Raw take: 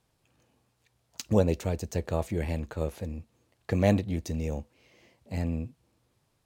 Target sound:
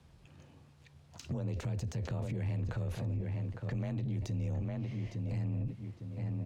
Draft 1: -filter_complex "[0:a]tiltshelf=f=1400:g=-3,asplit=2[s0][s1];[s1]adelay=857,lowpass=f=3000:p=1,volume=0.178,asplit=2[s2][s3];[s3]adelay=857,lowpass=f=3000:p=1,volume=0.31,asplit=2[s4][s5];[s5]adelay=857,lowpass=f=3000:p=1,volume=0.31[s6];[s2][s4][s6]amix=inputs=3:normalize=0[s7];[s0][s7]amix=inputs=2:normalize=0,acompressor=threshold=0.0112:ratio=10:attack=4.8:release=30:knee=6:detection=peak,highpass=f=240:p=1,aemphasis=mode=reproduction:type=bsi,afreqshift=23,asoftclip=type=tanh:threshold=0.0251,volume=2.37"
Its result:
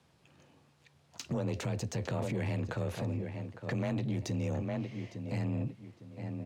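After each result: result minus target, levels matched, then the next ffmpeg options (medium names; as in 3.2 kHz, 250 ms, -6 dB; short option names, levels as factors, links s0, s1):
compression: peak gain reduction -9.5 dB; 250 Hz band +2.5 dB
-filter_complex "[0:a]tiltshelf=f=1400:g=-3,asplit=2[s0][s1];[s1]adelay=857,lowpass=f=3000:p=1,volume=0.178,asplit=2[s2][s3];[s3]adelay=857,lowpass=f=3000:p=1,volume=0.31,asplit=2[s4][s5];[s5]adelay=857,lowpass=f=3000:p=1,volume=0.31[s6];[s2][s4][s6]amix=inputs=3:normalize=0[s7];[s0][s7]amix=inputs=2:normalize=0,acompressor=threshold=0.00335:ratio=10:attack=4.8:release=30:knee=6:detection=peak,highpass=f=240:p=1,aemphasis=mode=reproduction:type=bsi,afreqshift=23,asoftclip=type=tanh:threshold=0.0251,volume=2.37"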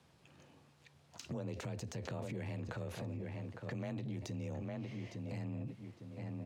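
250 Hz band +3.0 dB
-filter_complex "[0:a]tiltshelf=f=1400:g=-3,asplit=2[s0][s1];[s1]adelay=857,lowpass=f=3000:p=1,volume=0.178,asplit=2[s2][s3];[s3]adelay=857,lowpass=f=3000:p=1,volume=0.31,asplit=2[s4][s5];[s5]adelay=857,lowpass=f=3000:p=1,volume=0.31[s6];[s2][s4][s6]amix=inputs=3:normalize=0[s7];[s0][s7]amix=inputs=2:normalize=0,acompressor=threshold=0.00335:ratio=10:attack=4.8:release=30:knee=6:detection=peak,aemphasis=mode=reproduction:type=bsi,afreqshift=23,asoftclip=type=tanh:threshold=0.0251,volume=2.37"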